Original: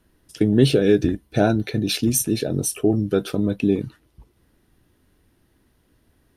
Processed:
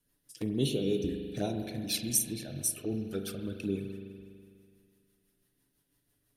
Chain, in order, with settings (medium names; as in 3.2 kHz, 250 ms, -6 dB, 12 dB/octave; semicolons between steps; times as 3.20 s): touch-sensitive flanger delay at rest 7.2 ms, full sweep at -13.5 dBFS; rotary cabinet horn 6 Hz; pre-emphasis filter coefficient 0.8; on a send: reverberation RT60 2.2 s, pre-delay 41 ms, DRR 5 dB; on the sum: trim +1 dB